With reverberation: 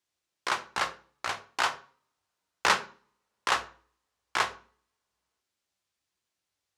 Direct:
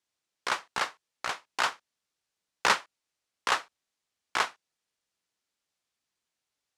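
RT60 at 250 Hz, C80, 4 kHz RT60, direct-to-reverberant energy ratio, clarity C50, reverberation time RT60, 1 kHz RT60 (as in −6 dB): 0.55 s, 19.5 dB, 0.40 s, 8.5 dB, 15.5 dB, 0.45 s, 0.45 s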